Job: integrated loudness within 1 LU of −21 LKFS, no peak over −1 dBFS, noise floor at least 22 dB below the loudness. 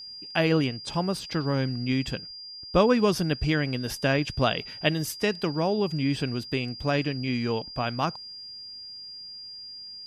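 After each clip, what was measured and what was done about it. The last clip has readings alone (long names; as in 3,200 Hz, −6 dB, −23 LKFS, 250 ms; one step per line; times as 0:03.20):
interfering tone 4,800 Hz; level of the tone −39 dBFS; integrated loudness −26.5 LKFS; sample peak −8.0 dBFS; target loudness −21.0 LKFS
→ notch filter 4,800 Hz, Q 30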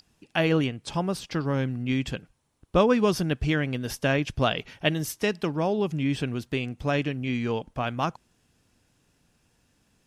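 interfering tone none found; integrated loudness −27.0 LKFS; sample peak −8.0 dBFS; target loudness −21.0 LKFS
→ level +6 dB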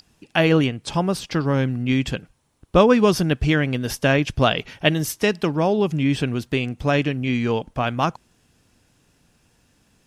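integrated loudness −21.0 LKFS; sample peak −2.0 dBFS; background noise floor −62 dBFS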